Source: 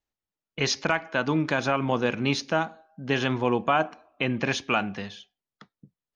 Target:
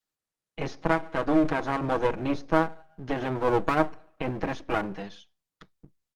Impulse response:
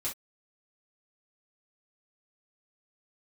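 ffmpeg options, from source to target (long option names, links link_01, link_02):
-filter_complex "[0:a]highpass=frequency=100:width=0.5412,highpass=frequency=100:width=1.3066,equalizer=frequency=2600:width_type=o:width=0.77:gain=-3.5,aecho=1:1:6.3:0.94,adynamicequalizer=threshold=0.02:dfrequency=360:dqfactor=1.4:tfrequency=360:tqfactor=1.4:attack=5:release=100:ratio=0.375:range=2.5:mode=boostabove:tftype=bell,acrossover=split=1600[link_01][link_02];[link_01]aeval=exprs='max(val(0),0)':channel_layout=same[link_03];[link_02]acompressor=threshold=-46dB:ratio=5[link_04];[link_03][link_04]amix=inputs=2:normalize=0" -ar 48000 -c:a libopus -b:a 32k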